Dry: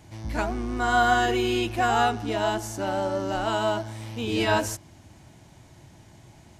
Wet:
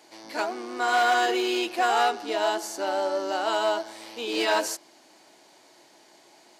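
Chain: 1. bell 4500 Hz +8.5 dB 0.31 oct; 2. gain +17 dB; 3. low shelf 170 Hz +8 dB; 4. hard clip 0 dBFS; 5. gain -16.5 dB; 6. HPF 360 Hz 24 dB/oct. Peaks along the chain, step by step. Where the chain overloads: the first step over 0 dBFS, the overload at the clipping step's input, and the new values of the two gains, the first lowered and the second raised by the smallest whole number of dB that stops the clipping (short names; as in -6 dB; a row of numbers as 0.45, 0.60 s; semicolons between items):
-9.0, +8.0, +9.0, 0.0, -16.5, -10.5 dBFS; step 2, 9.0 dB; step 2 +8 dB, step 5 -7.5 dB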